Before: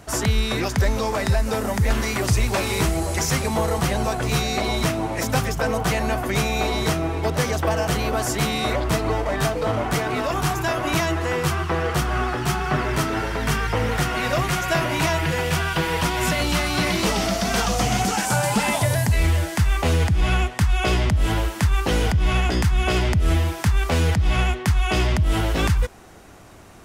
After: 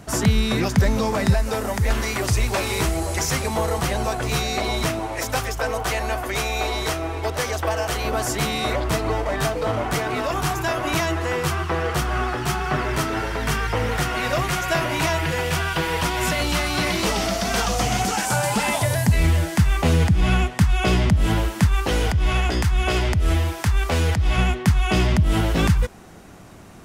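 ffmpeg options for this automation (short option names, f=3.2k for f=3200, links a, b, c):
-af "asetnsamples=n=441:p=0,asendcmd='1.34 equalizer g -4.5;4.99 equalizer g -14.5;8.05 equalizer g -3;19.06 equalizer g 6.5;21.67 equalizer g -3.5;24.38 equalizer g 6.5',equalizer=f=180:t=o:w=1.1:g=7.5"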